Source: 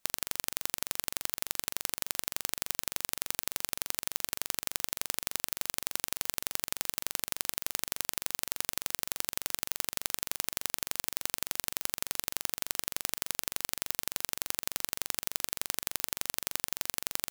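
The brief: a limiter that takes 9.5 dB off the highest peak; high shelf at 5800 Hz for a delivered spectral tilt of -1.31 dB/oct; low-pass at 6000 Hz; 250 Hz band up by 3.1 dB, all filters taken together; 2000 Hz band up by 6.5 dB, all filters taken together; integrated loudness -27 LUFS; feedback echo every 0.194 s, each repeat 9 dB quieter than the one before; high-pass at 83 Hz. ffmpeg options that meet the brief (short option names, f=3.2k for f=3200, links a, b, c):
-af "highpass=83,lowpass=6k,equalizer=f=250:t=o:g=4,equalizer=f=2k:t=o:g=7,highshelf=f=5.8k:g=8,alimiter=limit=-15.5dB:level=0:latency=1,aecho=1:1:194|388|582|776:0.355|0.124|0.0435|0.0152,volume=14dB"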